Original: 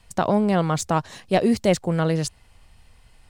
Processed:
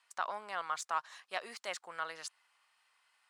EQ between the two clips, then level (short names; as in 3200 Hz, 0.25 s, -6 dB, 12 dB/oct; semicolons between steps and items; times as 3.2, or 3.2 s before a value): band-pass 1200 Hz, Q 2; differentiator; +9.0 dB